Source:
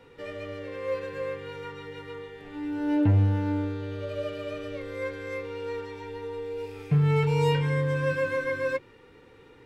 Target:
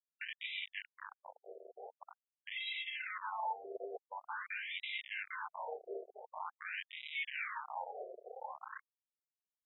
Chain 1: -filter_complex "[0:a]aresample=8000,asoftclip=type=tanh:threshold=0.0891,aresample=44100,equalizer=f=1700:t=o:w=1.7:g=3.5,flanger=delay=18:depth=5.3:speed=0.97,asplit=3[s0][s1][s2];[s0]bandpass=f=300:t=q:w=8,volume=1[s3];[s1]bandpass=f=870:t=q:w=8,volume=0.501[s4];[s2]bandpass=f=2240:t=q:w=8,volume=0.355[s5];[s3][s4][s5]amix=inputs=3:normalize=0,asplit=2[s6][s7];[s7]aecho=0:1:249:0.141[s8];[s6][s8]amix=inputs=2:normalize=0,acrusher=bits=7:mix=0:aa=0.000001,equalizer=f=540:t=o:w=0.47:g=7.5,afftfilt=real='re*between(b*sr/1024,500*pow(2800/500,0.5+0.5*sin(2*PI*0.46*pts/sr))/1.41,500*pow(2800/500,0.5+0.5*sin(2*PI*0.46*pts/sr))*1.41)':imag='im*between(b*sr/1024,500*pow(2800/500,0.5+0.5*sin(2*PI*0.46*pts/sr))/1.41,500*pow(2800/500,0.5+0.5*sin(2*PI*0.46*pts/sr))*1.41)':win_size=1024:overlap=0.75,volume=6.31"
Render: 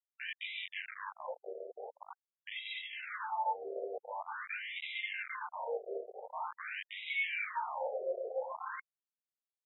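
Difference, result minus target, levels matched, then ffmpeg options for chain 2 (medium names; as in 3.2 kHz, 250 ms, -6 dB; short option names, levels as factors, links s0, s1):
saturation: distortion -8 dB; 500 Hz band +5.0 dB
-filter_complex "[0:a]aresample=8000,asoftclip=type=tanh:threshold=0.0299,aresample=44100,equalizer=f=1700:t=o:w=1.7:g=3.5,flanger=delay=18:depth=5.3:speed=0.97,asplit=3[s0][s1][s2];[s0]bandpass=f=300:t=q:w=8,volume=1[s3];[s1]bandpass=f=870:t=q:w=8,volume=0.501[s4];[s2]bandpass=f=2240:t=q:w=8,volume=0.355[s5];[s3][s4][s5]amix=inputs=3:normalize=0,asplit=2[s6][s7];[s7]aecho=0:1:249:0.141[s8];[s6][s8]amix=inputs=2:normalize=0,acrusher=bits=7:mix=0:aa=0.000001,afftfilt=real='re*between(b*sr/1024,500*pow(2800/500,0.5+0.5*sin(2*PI*0.46*pts/sr))/1.41,500*pow(2800/500,0.5+0.5*sin(2*PI*0.46*pts/sr))*1.41)':imag='im*between(b*sr/1024,500*pow(2800/500,0.5+0.5*sin(2*PI*0.46*pts/sr))/1.41,500*pow(2800/500,0.5+0.5*sin(2*PI*0.46*pts/sr))*1.41)':win_size=1024:overlap=0.75,volume=6.31"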